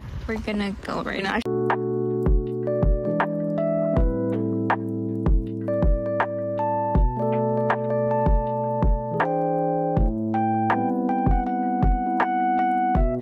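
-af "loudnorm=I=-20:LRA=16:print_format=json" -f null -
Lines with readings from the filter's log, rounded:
"input_i" : "-23.6",
"input_tp" : "-11.0",
"input_lra" : "1.9",
"input_thresh" : "-33.6",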